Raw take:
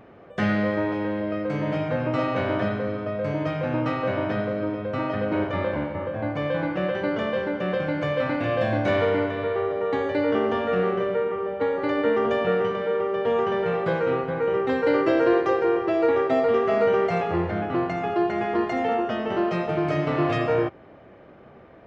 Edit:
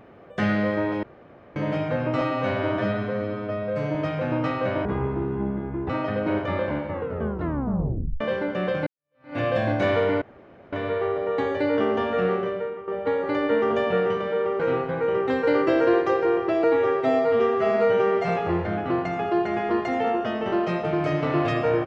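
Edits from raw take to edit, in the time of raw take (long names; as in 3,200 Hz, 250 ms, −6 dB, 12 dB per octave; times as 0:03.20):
0:01.03–0:01.56: fill with room tone
0:02.21–0:03.37: time-stretch 1.5×
0:04.27–0:04.95: play speed 65%
0:05.96: tape stop 1.30 s
0:07.92–0:08.43: fade in exponential
0:09.27: splice in room tone 0.51 s
0:10.85–0:11.42: fade out, to −12 dB
0:13.14–0:13.99: remove
0:16.03–0:17.13: time-stretch 1.5×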